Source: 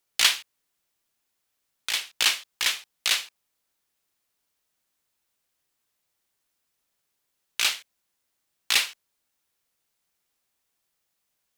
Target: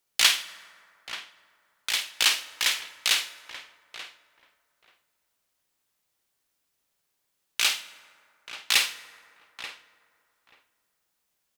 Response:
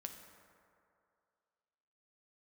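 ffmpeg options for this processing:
-filter_complex "[0:a]asplit=2[link_01][link_02];[link_02]adelay=884,lowpass=frequency=1400:poles=1,volume=-9.5dB,asplit=2[link_03][link_04];[link_04]adelay=884,lowpass=frequency=1400:poles=1,volume=0.16[link_05];[link_01][link_03][link_05]amix=inputs=3:normalize=0,asplit=2[link_06][link_07];[1:a]atrim=start_sample=2205,adelay=50[link_08];[link_07][link_08]afir=irnorm=-1:irlink=0,volume=-5.5dB[link_09];[link_06][link_09]amix=inputs=2:normalize=0"

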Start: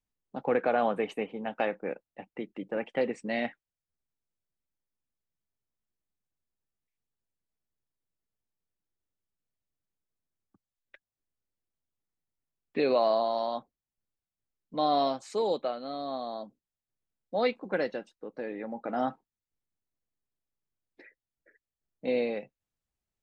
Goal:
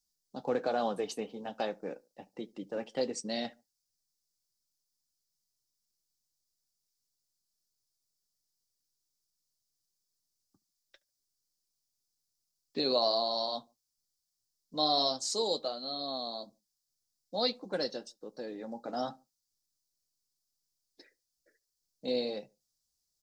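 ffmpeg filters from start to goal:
ffmpeg -i in.wav -filter_complex "[0:a]highshelf=frequency=3400:width_type=q:width=3:gain=14,asplit=2[link_01][link_02];[link_02]adelay=72,lowpass=frequency=1200:poles=1,volume=-23.5dB,asplit=2[link_03][link_04];[link_04]adelay=72,lowpass=frequency=1200:poles=1,volume=0.35[link_05];[link_03][link_05]amix=inputs=2:normalize=0[link_06];[link_01][link_06]amix=inputs=2:normalize=0,flanger=delay=4.8:depth=3.9:regen=-59:speed=1.2:shape=triangular" out.wav

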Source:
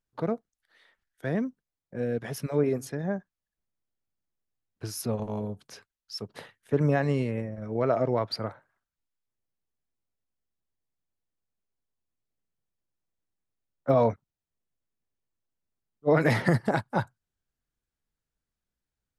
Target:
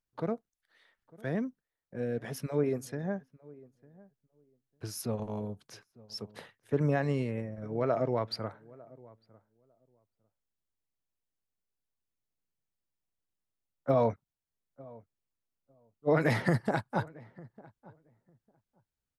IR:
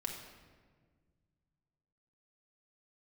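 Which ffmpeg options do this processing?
-filter_complex "[0:a]asplit=2[link_01][link_02];[link_02]adelay=901,lowpass=frequency=970:poles=1,volume=-21.5dB,asplit=2[link_03][link_04];[link_04]adelay=901,lowpass=frequency=970:poles=1,volume=0.16[link_05];[link_01][link_03][link_05]amix=inputs=3:normalize=0,volume=-4dB"

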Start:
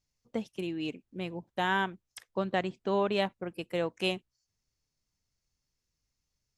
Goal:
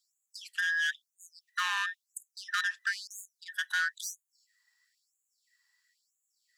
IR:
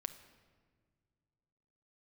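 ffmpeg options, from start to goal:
-filter_complex "[0:a]afftfilt=real='real(if(between(b,1,1012),(2*floor((b-1)/92)+1)*92-b,b),0)':imag='imag(if(between(b,1,1012),(2*floor((b-1)/92)+1)*92-b,b),0)*if(between(b,1,1012),-1,1)':win_size=2048:overlap=0.75,bandreject=frequency=50:width_type=h:width=6,bandreject=frequency=100:width_type=h:width=6,bandreject=frequency=150:width_type=h:width=6,bandreject=frequency=200:width_type=h:width=6,bandreject=frequency=250:width_type=h:width=6,acrossover=split=470|1600[link_01][link_02][link_03];[link_02]acompressor=threshold=-43dB:ratio=12[link_04];[link_01][link_04][link_03]amix=inputs=3:normalize=0,asoftclip=type=tanh:threshold=-33dB,afftfilt=real='re*gte(b*sr/1024,740*pow(6600/740,0.5+0.5*sin(2*PI*1*pts/sr)))':imag='im*gte(b*sr/1024,740*pow(6600/740,0.5+0.5*sin(2*PI*1*pts/sr)))':win_size=1024:overlap=0.75,volume=9dB"

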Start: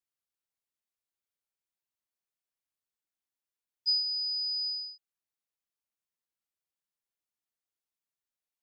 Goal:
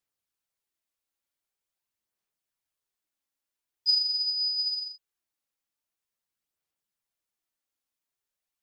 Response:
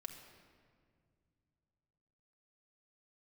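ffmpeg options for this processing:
-af "aphaser=in_gain=1:out_gain=1:delay=3.7:decay=0.29:speed=0.45:type=sinusoidal,volume=3.5dB"

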